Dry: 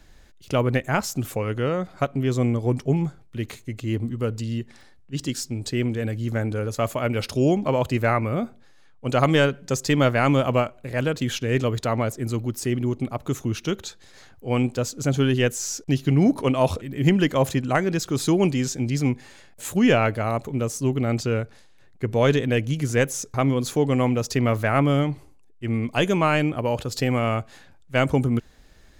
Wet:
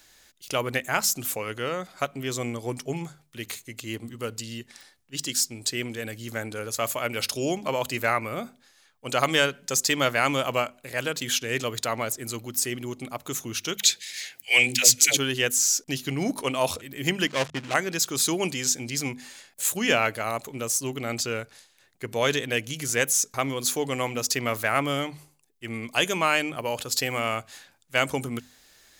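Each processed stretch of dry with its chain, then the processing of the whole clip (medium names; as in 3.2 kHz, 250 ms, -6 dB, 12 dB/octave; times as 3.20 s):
13.77–15.17 s: high-pass 62 Hz + resonant high shelf 1.6 kHz +9.5 dB, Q 3 + phase dispersion lows, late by 108 ms, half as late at 470 Hz
17.27–17.74 s: dead-time distortion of 0.28 ms + gate -39 dBFS, range -27 dB + distance through air 100 m
whole clip: tilt EQ +3.5 dB/octave; hum notches 50/100/150/200/250 Hz; trim -2 dB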